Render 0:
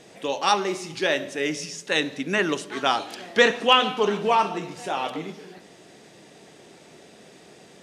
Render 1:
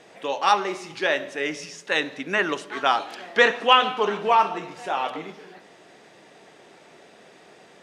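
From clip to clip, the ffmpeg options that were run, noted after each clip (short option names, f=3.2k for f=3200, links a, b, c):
-af "equalizer=f=1.2k:w=0.35:g=11,volume=-8dB"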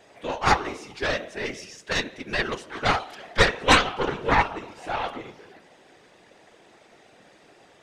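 -af "aeval=exprs='0.891*(cos(1*acos(clip(val(0)/0.891,-1,1)))-cos(1*PI/2))+0.398*(cos(4*acos(clip(val(0)/0.891,-1,1)))-cos(4*PI/2))':c=same,afftfilt=real='hypot(re,im)*cos(2*PI*random(0))':imag='hypot(re,im)*sin(2*PI*random(1))':win_size=512:overlap=0.75,volume=2.5dB"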